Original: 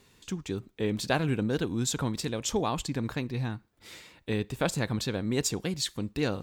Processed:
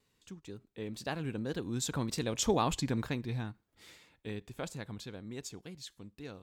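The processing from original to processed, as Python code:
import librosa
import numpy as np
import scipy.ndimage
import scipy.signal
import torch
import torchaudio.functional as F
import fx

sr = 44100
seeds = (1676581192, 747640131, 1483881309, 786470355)

y = fx.doppler_pass(x, sr, speed_mps=10, closest_m=5.1, pass_at_s=2.62)
y = fx.wow_flutter(y, sr, seeds[0], rate_hz=2.1, depth_cents=28.0)
y = fx.end_taper(y, sr, db_per_s=560.0)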